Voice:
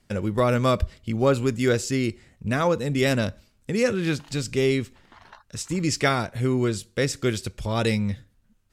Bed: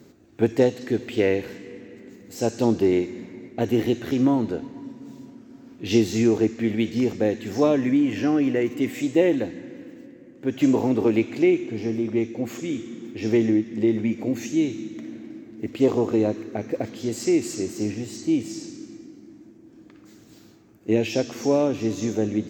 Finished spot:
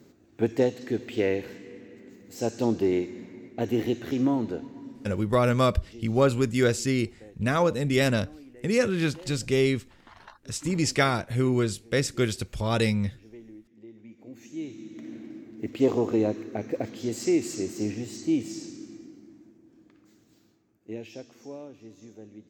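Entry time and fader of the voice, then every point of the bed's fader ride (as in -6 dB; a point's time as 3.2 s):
4.95 s, -1.0 dB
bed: 5.07 s -4.5 dB
5.63 s -27 dB
13.93 s -27 dB
15.13 s -3 dB
19.04 s -3 dB
21.82 s -22.5 dB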